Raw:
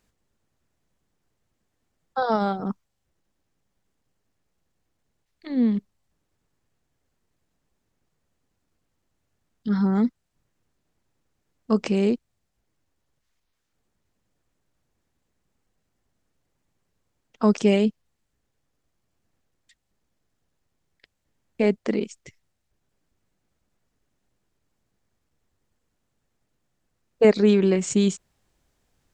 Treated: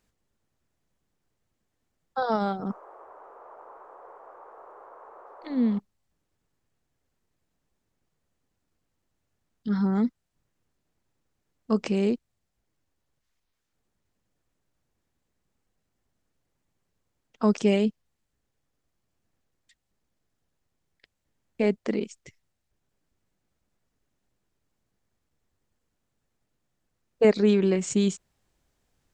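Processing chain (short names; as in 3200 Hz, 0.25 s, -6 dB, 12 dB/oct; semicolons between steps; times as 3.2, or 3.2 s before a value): 2.69–5.78 band noise 400–1200 Hz -45 dBFS; gain -3 dB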